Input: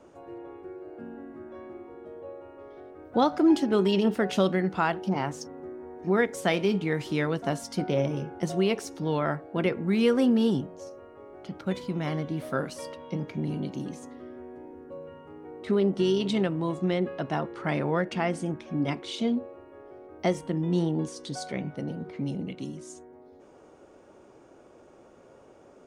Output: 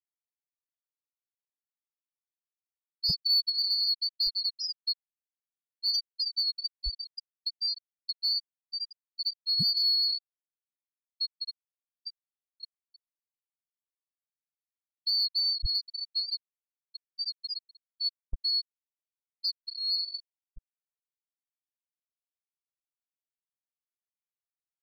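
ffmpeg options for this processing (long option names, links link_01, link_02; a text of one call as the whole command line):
ffmpeg -i in.wav -filter_complex "[0:a]afftfilt=real='real(if(lt(b,736),b+184*(1-2*mod(floor(b/184),2)),b),0)':imag='imag(if(lt(b,736),b+184*(1-2*mod(floor(b/184),2)),b),0)':win_size=2048:overlap=0.75,asplit=6[link_01][link_02][link_03][link_04][link_05][link_06];[link_02]adelay=263,afreqshift=97,volume=-10dB[link_07];[link_03]adelay=526,afreqshift=194,volume=-16.6dB[link_08];[link_04]adelay=789,afreqshift=291,volume=-23.1dB[link_09];[link_05]adelay=1052,afreqshift=388,volume=-29.7dB[link_10];[link_06]adelay=1315,afreqshift=485,volume=-36.2dB[link_11];[link_01][link_07][link_08][link_09][link_10][link_11]amix=inputs=6:normalize=0,asubboost=boost=11.5:cutoff=230,bandreject=frequency=60:width_type=h:width=6,bandreject=frequency=120:width_type=h:width=6,asetrate=45938,aresample=44100,afftfilt=real='re*gte(hypot(re,im),0.398)':imag='im*gte(hypot(re,im),0.398)':win_size=1024:overlap=0.75,aeval=exprs='0.282*(cos(1*acos(clip(val(0)/0.282,-1,1)))-cos(1*PI/2))+0.02*(cos(5*acos(clip(val(0)/0.282,-1,1)))-cos(5*PI/2))':channel_layout=same,highshelf=frequency=4200:gain=-12,agate=range=-10dB:threshold=-46dB:ratio=16:detection=peak,asplit=2[link_12][link_13];[link_13]alimiter=level_in=3dB:limit=-24dB:level=0:latency=1:release=134,volume=-3dB,volume=-1.5dB[link_14];[link_12][link_14]amix=inputs=2:normalize=0,volume=-2dB" out.wav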